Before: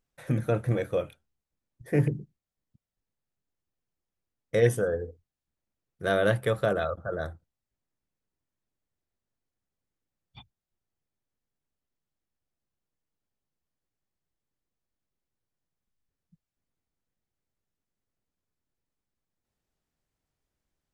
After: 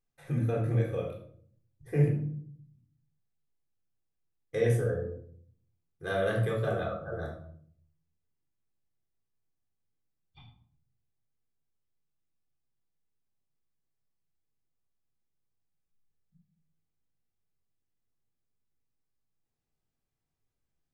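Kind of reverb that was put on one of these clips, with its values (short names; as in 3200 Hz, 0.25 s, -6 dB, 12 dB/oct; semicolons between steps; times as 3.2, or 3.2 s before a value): shoebox room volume 840 m³, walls furnished, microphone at 3.8 m; gain -10 dB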